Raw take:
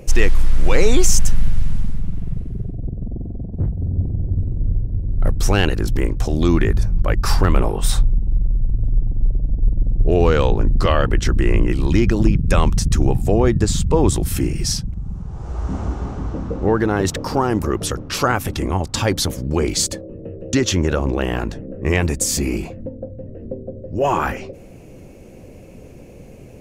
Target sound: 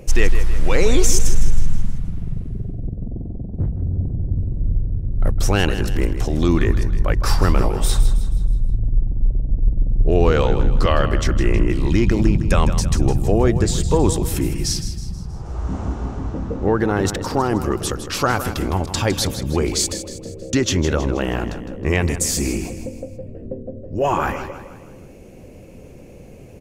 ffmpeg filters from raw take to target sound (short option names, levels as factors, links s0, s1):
-af "aecho=1:1:159|318|477|636|795:0.282|0.13|0.0596|0.0274|0.0126,volume=0.891"